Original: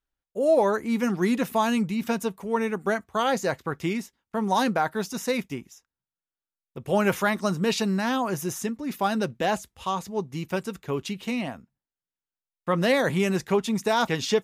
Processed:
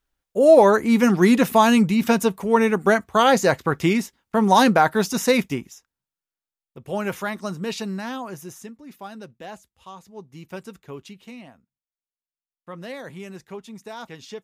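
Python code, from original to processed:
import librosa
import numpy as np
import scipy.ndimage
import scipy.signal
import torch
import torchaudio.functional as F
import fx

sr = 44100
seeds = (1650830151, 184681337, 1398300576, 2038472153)

y = fx.gain(x, sr, db=fx.line((5.43, 8.0), (6.79, -4.0), (7.94, -4.0), (9.09, -13.0), (9.98, -13.0), (10.67, -6.0), (11.53, -13.5)))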